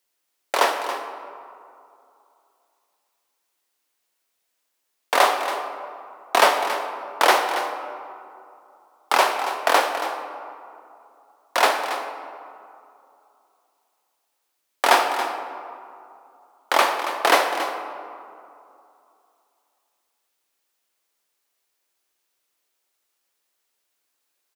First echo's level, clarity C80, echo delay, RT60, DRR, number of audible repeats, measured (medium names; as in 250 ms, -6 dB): -11.5 dB, 6.5 dB, 278 ms, 2.6 s, 5.0 dB, 1